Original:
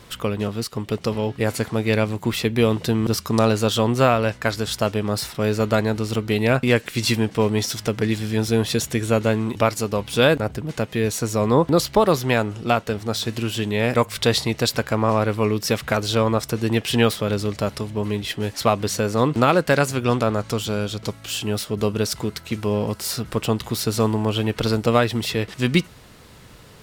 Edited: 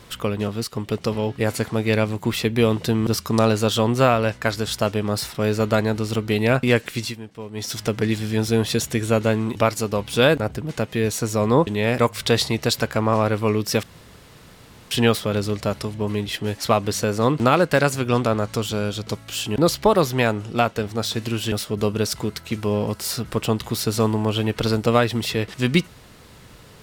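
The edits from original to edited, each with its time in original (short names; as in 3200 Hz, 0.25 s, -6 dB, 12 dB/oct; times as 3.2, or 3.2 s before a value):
6.9–7.77 dip -15.5 dB, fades 0.25 s
11.67–13.63 move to 21.52
15.79–16.87 room tone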